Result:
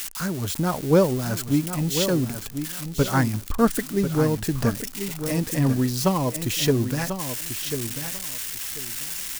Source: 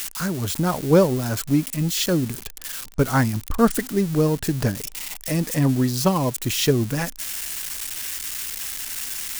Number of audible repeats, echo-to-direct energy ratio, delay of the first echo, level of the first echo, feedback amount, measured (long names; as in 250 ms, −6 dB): 2, −9.0 dB, 1,042 ms, −9.0 dB, 21%